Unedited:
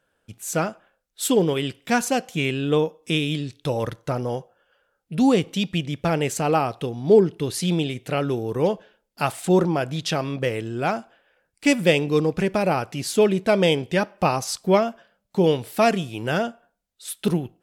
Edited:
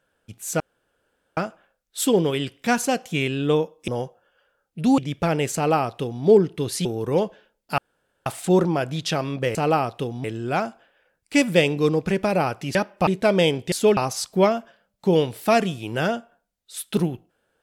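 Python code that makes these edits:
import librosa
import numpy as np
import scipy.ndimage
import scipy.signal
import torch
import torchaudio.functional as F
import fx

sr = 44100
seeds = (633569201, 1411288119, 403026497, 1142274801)

y = fx.edit(x, sr, fx.insert_room_tone(at_s=0.6, length_s=0.77),
    fx.cut(start_s=3.11, length_s=1.11),
    fx.cut(start_s=5.32, length_s=0.48),
    fx.duplicate(start_s=6.37, length_s=0.69, to_s=10.55),
    fx.cut(start_s=7.67, length_s=0.66),
    fx.insert_room_tone(at_s=9.26, length_s=0.48),
    fx.swap(start_s=13.06, length_s=0.25, other_s=13.96, other_length_s=0.32), tone=tone)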